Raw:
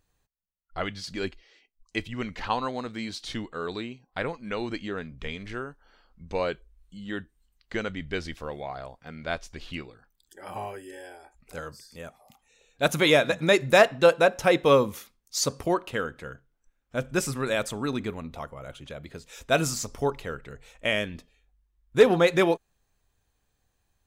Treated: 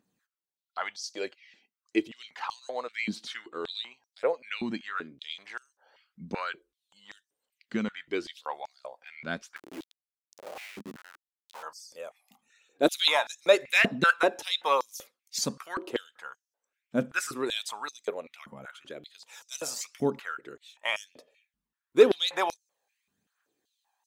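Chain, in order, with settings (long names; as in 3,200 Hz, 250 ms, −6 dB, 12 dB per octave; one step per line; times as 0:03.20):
phase shifter 0.94 Hz, delay 1.3 ms, feedback 43%
0:09.56–0:11.63: comparator with hysteresis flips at −37 dBFS
high-pass on a step sequencer 5.2 Hz 210–5,800 Hz
level −5 dB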